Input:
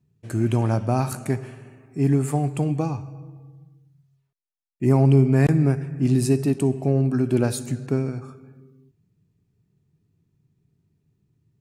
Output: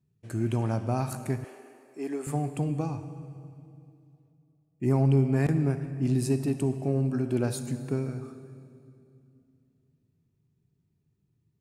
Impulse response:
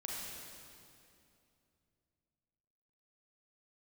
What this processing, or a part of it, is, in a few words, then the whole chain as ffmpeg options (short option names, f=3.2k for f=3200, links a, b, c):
saturated reverb return: -filter_complex "[0:a]asplit=2[a][b];[1:a]atrim=start_sample=2205[c];[b][c]afir=irnorm=-1:irlink=0,asoftclip=type=tanh:threshold=-14dB,volume=-8.5dB[d];[a][d]amix=inputs=2:normalize=0,asettb=1/sr,asplit=3[e][f][g];[e]atrim=end=1.444[h];[f]atrim=start=1.44:end=2.27,asetpts=PTS-STARTPTS,afade=t=in:d=0.004:c=qsin,afade=t=out:st=0.826:d=0.004:c=qsin,highpass=f=320:w=0.5412,highpass=f=320:w=1.3066[i];[g]atrim=start=2.266[j];[h][i]acrossfade=d=0.004:c1=hsin:c2=qsin[k];[k][j]acrossfade=d=0.004:c1=qsin:c2=hsin,volume=-8dB"